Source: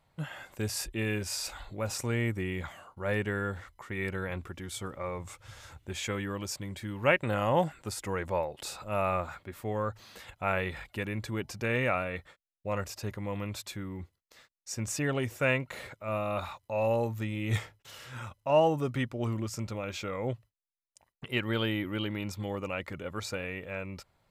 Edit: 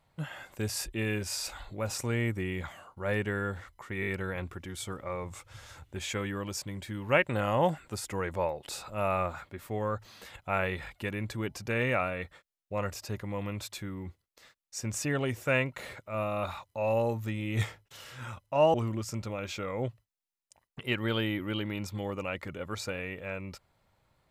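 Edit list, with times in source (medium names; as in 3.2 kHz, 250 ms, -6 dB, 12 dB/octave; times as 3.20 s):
4.01 s: stutter 0.02 s, 4 plays
18.68–19.19 s: delete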